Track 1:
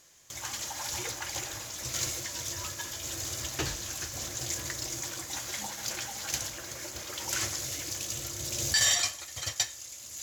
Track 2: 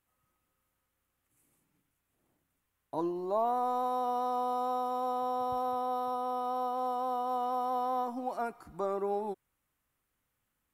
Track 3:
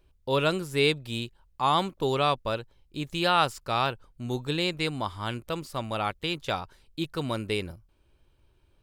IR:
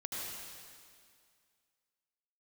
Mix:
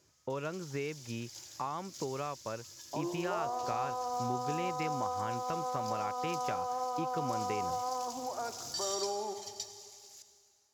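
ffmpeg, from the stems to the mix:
-filter_complex "[0:a]equalizer=f=5.1k:w=2.4:g=9,acrossover=split=340|3000[a][b][c];[b]acompressor=threshold=-48dB:ratio=6[d];[a][d][c]amix=inputs=3:normalize=0,volume=-18dB,asplit=2[e][f];[f]volume=-7dB[g];[1:a]bass=f=250:g=-14,treble=f=4k:g=-12,alimiter=level_in=4dB:limit=-24dB:level=0:latency=1,volume=-4dB,volume=-2dB,asplit=2[h][i];[i]volume=-9dB[j];[2:a]lowpass=f=2.4k:w=0.5412,lowpass=f=2.4k:w=1.3066,volume=-1dB[k];[e][k]amix=inputs=2:normalize=0,highpass=f=98:w=0.5412,highpass=f=98:w=1.3066,acompressor=threshold=-35dB:ratio=6,volume=0dB[l];[3:a]atrim=start_sample=2205[m];[g][j]amix=inputs=2:normalize=0[n];[n][m]afir=irnorm=-1:irlink=0[o];[h][l][o]amix=inputs=3:normalize=0"

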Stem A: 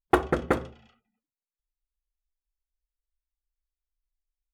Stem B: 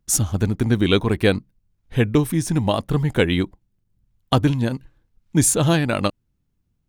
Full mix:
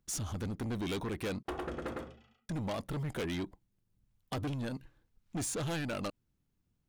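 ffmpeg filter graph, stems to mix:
-filter_complex "[0:a]adelay=1350,volume=-7dB,asplit=2[a][b];[b]volume=-4dB[c];[1:a]acrossover=split=6300[d][e];[e]acompressor=threshold=-28dB:ratio=4:attack=1:release=60[f];[d][f]amix=inputs=2:normalize=0,lowshelf=f=150:g=-6.5,volume=-3.5dB,asplit=3[g][h][i];[g]atrim=end=1.43,asetpts=PTS-STARTPTS,afade=t=out:st=1.426:d=0.004:c=hsin[j];[h]atrim=start=1.43:end=2.49,asetpts=PTS-STARTPTS,volume=0[k];[i]atrim=start=2.49,asetpts=PTS-STARTPTS,afade=t=in:d=0.004:c=hsin[l];[j][k][l]concat=n=3:v=0:a=1[m];[c]aecho=0:1:106:1[n];[a][m][n]amix=inputs=3:normalize=0,asoftclip=type=tanh:threshold=-27.5dB,alimiter=level_in=8.5dB:limit=-24dB:level=0:latency=1:release=66,volume=-8.5dB"

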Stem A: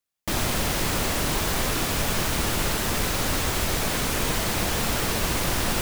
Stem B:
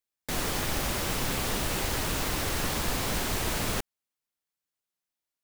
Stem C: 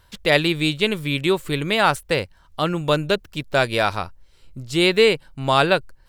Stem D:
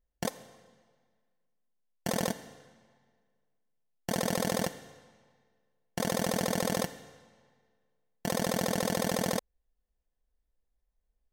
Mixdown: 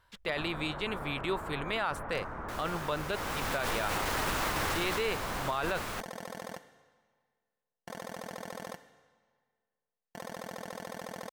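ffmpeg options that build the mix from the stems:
-filter_complex "[0:a]lowpass=f=1.5k:w=0.5412,lowpass=f=1.5k:w=1.3066,volume=-17dB[a];[1:a]adelay=2200,volume=-4.5dB,afade=t=in:st=3.06:d=0.75:silence=0.237137,afade=t=out:st=4.83:d=0.35:silence=0.421697[b];[2:a]volume=-15.5dB[c];[3:a]adelay=1900,volume=-16.5dB[d];[a][b][c][d]amix=inputs=4:normalize=0,equalizer=f=1.2k:w=0.54:g=9.5,alimiter=limit=-22dB:level=0:latency=1:release=28"

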